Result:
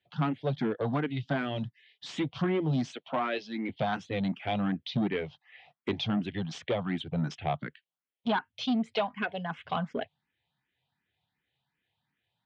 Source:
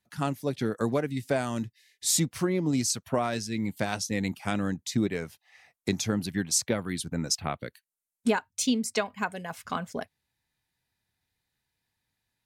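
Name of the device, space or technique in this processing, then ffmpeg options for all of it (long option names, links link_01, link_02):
barber-pole phaser into a guitar amplifier: -filter_complex "[0:a]asettb=1/sr,asplit=3[link_01][link_02][link_03];[link_01]atrim=end=2.924[link_04];[link_02]atrim=start=2.92:end=3.69,asetpts=PTS-STARTPTS,afade=type=in:duration=0.004:curve=qsin,afade=type=out:start_time=0.766:duration=0.004:curve=qsin,highpass=frequency=260:width=0.5412,highpass=frequency=260:width=1.3066[link_05];[link_03]atrim=start=3.686[link_06];[link_04][link_05]acrossfade=duration=0.004:curve1=hsin:curve2=qsin[link_07];[link_07][link_06]acrossfade=duration=0.004:curve1=qsin:curve2=hsin,asplit=2[link_08][link_09];[link_09]afreqshift=2.7[link_10];[link_08][link_10]amix=inputs=2:normalize=1,asoftclip=type=tanh:threshold=-26.5dB,highpass=100,equalizer=frequency=150:width_type=q:width=4:gain=5,equalizer=frequency=740:width_type=q:width=4:gain=4,equalizer=frequency=3200:width_type=q:width=4:gain=8,lowpass=frequency=3500:width=0.5412,lowpass=frequency=3500:width=1.3066,volume=3.5dB"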